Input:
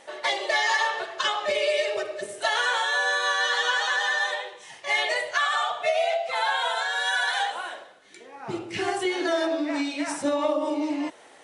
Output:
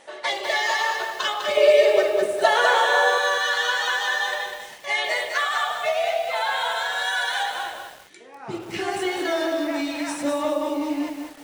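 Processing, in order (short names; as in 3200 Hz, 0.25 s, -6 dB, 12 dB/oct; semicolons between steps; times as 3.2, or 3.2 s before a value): 1.57–3.18 bell 490 Hz +11 dB 2.5 oct; lo-fi delay 0.2 s, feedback 35%, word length 7-bit, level -5 dB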